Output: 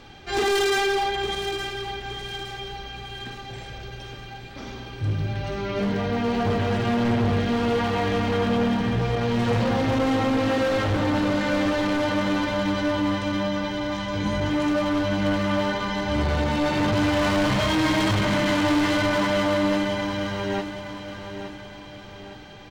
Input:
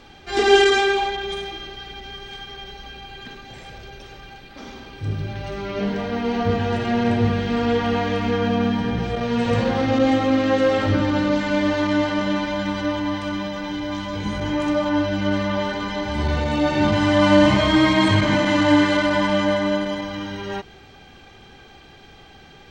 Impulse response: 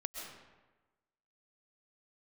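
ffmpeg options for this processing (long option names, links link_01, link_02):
-filter_complex "[0:a]equalizer=frequency=120:width=5.5:gain=7.5,asoftclip=type=hard:threshold=-20dB,asplit=2[link_01][link_02];[link_02]aecho=0:1:866|1732|2598|3464|4330:0.316|0.139|0.0612|0.0269|0.0119[link_03];[link_01][link_03]amix=inputs=2:normalize=0"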